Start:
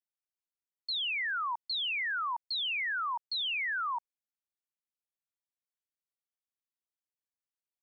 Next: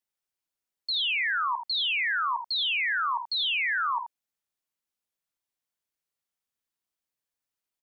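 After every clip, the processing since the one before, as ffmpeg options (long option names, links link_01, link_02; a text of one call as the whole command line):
ffmpeg -i in.wav -af "aecho=1:1:52|79:0.282|0.355,volume=5dB" out.wav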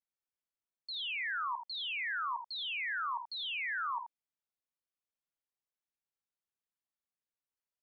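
ffmpeg -i in.wav -af "highshelf=frequency=4100:gain=-10,volume=-7.5dB" out.wav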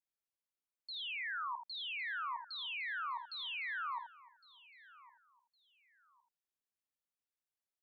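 ffmpeg -i in.wav -af "aecho=1:1:1110|2220:0.1|0.026,volume=-4dB" out.wav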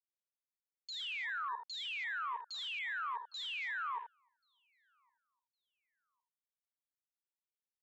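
ffmpeg -i in.wav -af "afwtdn=0.00398,volume=1dB" out.wav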